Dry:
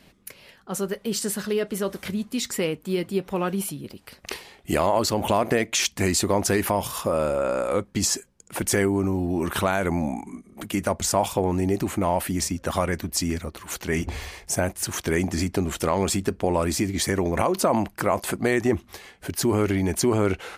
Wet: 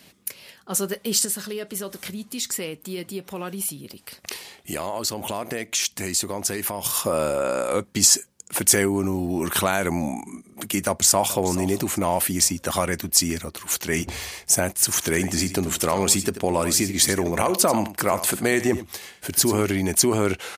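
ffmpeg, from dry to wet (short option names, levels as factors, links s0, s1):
-filter_complex "[0:a]asettb=1/sr,asplit=3[s0][s1][s2];[s0]atrim=end=1.254[s3];[s1]atrim=start=1.25:end=6.85,asetpts=PTS-STARTPTS,afade=t=in:d=0.004:c=qsin,afade=t=out:st=5.596:d=0.004:c=qsin,acompressor=threshold=0.01:ratio=1.5:attack=3.2:release=140:knee=1:detection=peak[s4];[s2]atrim=start=6.846[s5];[s3][s4]acrossfade=d=0.004:c1=hsin:c2=qsin[s6];[s6][s5]acrossfade=d=0.004:c1=qsin:c2=hsin,asplit=2[s7][s8];[s8]afade=t=in:st=10.85:d=0.01,afade=t=out:st=11.38:d=0.01,aecho=0:1:430|860|1290:0.188365|0.0565095|0.0169528[s9];[s7][s9]amix=inputs=2:normalize=0,asettb=1/sr,asplit=3[s10][s11][s12];[s10]atrim=end=14.714[s13];[s11]atrim=start=14.71:end=19.65,asetpts=PTS-STARTPTS,afade=t=in:d=0.004:c=qsin,afade=t=out:st=4.936:d=0.004:c=qsin,aecho=1:1:87:0.224,atrim=end_sample=217854[s14];[s12]atrim=start=19.646[s15];[s13][s14]acrossfade=d=0.004:c1=hsin:c2=qsin[s16];[s16][s15]acrossfade=d=0.004:c1=qsin:c2=hsin,highpass=87,highshelf=f=3500:g=11"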